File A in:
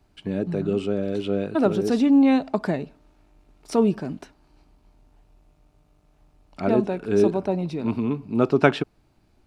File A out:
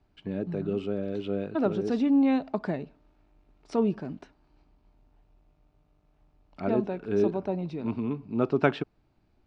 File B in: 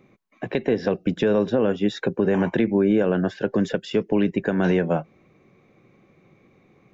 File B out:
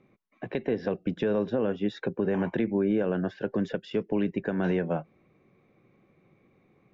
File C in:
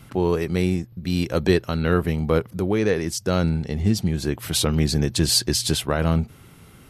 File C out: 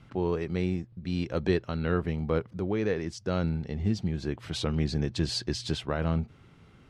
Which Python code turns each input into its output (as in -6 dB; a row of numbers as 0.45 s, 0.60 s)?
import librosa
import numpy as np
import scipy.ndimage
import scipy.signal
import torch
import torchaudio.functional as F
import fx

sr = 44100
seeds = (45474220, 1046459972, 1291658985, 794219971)

y = fx.air_absorb(x, sr, metres=120.0)
y = y * 10.0 ** (-30 / 20.0) / np.sqrt(np.mean(np.square(y)))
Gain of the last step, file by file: -5.5 dB, -6.5 dB, -7.0 dB